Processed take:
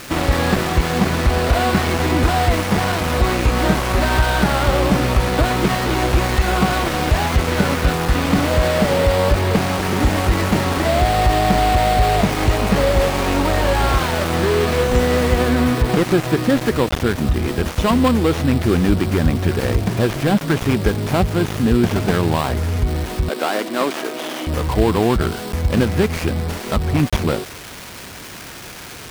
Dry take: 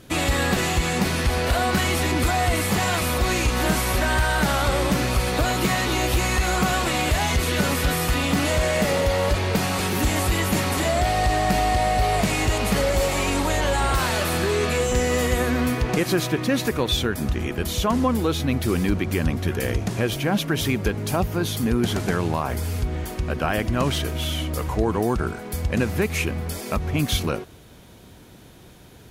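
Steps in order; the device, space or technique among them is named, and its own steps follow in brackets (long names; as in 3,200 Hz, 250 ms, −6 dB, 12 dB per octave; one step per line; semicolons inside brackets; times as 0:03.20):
budget class-D amplifier (gap after every zero crossing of 0.23 ms; spike at every zero crossing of −14 dBFS)
0:23.29–0:24.47: high-pass filter 280 Hz 24 dB per octave
low-pass filter 2,400 Hz 6 dB per octave
level +6.5 dB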